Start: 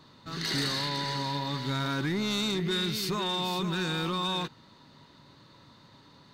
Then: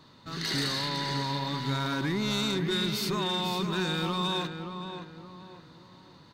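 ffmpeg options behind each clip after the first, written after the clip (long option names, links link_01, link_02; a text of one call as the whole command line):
ffmpeg -i in.wav -filter_complex "[0:a]asplit=2[link_01][link_02];[link_02]adelay=572,lowpass=frequency=1900:poles=1,volume=-7dB,asplit=2[link_03][link_04];[link_04]adelay=572,lowpass=frequency=1900:poles=1,volume=0.38,asplit=2[link_05][link_06];[link_06]adelay=572,lowpass=frequency=1900:poles=1,volume=0.38,asplit=2[link_07][link_08];[link_08]adelay=572,lowpass=frequency=1900:poles=1,volume=0.38[link_09];[link_01][link_03][link_05][link_07][link_09]amix=inputs=5:normalize=0" out.wav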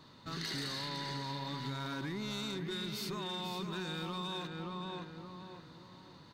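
ffmpeg -i in.wav -af "acompressor=threshold=-35dB:ratio=6,volume=-2dB" out.wav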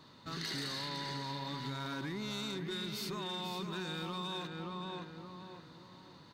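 ffmpeg -i in.wav -af "lowshelf=frequency=75:gain=-6" out.wav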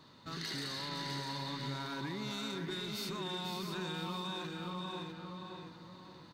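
ffmpeg -i in.wav -af "aecho=1:1:522|650:0.316|0.447,volume=-1dB" out.wav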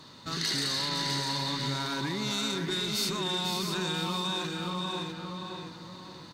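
ffmpeg -i in.wav -af "equalizer=frequency=7400:width=0.63:gain=7.5,volume=7dB" out.wav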